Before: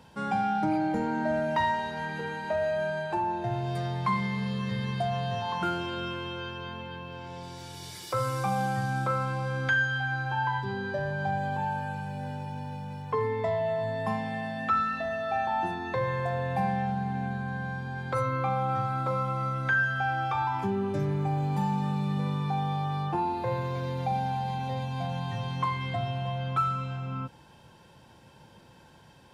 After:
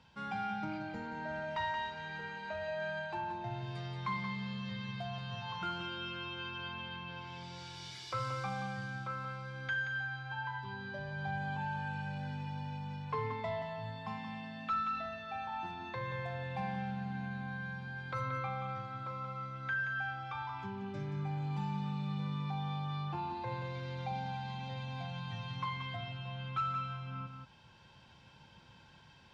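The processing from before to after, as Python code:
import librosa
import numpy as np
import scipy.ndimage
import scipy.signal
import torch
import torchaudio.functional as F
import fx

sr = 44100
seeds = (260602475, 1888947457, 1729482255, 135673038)

y = fx.tone_stack(x, sr, knobs='5-5-5')
y = fx.notch(y, sr, hz=1800.0, q=16.0)
y = fx.rider(y, sr, range_db=10, speed_s=2.0)
y = np.clip(y, -10.0 ** (-33.0 / 20.0), 10.0 ** (-33.0 / 20.0))
y = fx.air_absorb(y, sr, metres=160.0)
y = y + 10.0 ** (-7.5 / 20.0) * np.pad(y, (int(178 * sr / 1000.0), 0))[:len(y)]
y = F.gain(torch.from_numpy(y), 5.0).numpy()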